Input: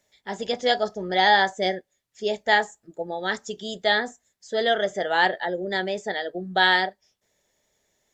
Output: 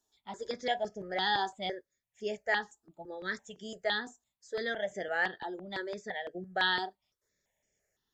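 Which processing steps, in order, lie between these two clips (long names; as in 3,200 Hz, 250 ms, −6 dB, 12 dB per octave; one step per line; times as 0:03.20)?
step-sequenced phaser 5.9 Hz 560–3,900 Hz
level −7.5 dB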